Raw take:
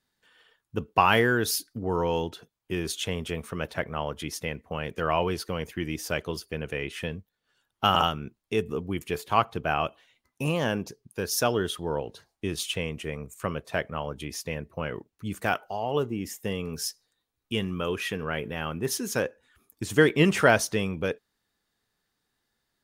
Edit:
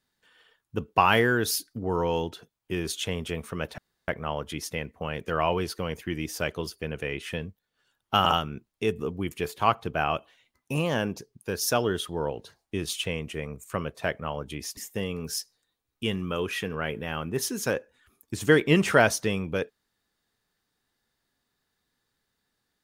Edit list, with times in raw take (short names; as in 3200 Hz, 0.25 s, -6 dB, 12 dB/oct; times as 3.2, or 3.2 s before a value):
3.78 insert room tone 0.30 s
14.47–16.26 cut